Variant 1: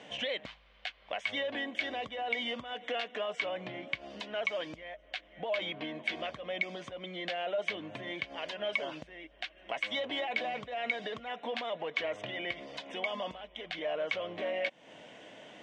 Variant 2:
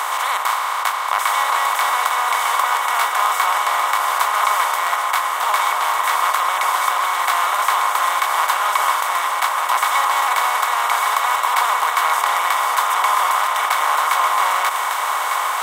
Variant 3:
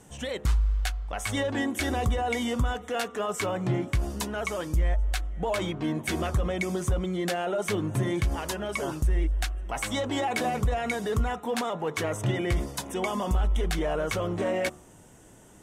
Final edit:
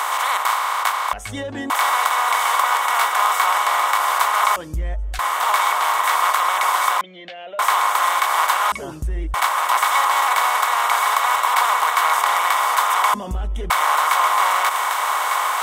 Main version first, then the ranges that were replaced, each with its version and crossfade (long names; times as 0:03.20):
2
0:01.13–0:01.70: punch in from 3
0:04.56–0:05.19: punch in from 3
0:07.01–0:07.59: punch in from 1
0:08.72–0:09.34: punch in from 3
0:13.14–0:13.70: punch in from 3